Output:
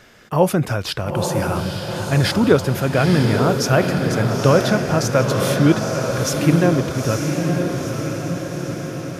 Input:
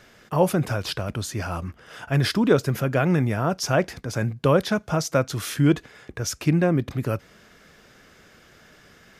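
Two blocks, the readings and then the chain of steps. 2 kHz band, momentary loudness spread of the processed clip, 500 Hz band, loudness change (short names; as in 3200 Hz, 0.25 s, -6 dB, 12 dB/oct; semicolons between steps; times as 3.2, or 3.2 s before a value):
+6.0 dB, 9 LU, +6.0 dB, +5.0 dB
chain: diffused feedback echo 0.911 s, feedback 61%, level -4 dB; gain +4 dB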